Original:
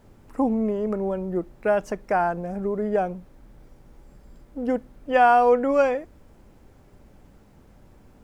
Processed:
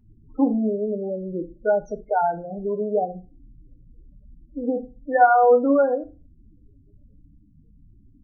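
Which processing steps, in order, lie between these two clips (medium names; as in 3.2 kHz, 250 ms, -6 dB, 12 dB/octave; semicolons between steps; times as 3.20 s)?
loudest bins only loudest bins 8; FDN reverb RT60 0.31 s, low-frequency decay 1.25×, high-frequency decay 0.6×, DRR 6.5 dB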